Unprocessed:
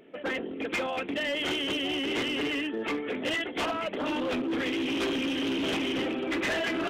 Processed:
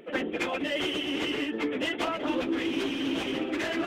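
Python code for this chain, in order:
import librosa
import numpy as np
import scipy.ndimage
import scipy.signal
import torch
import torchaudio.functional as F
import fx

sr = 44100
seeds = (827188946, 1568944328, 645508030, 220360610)

y = fx.dynamic_eq(x, sr, hz=320.0, q=5.4, threshold_db=-47.0, ratio=4.0, max_db=4)
y = fx.rider(y, sr, range_db=10, speed_s=2.0)
y = fx.stretch_vocoder_free(y, sr, factor=0.56)
y = y * 10.0 ** (2.5 / 20.0)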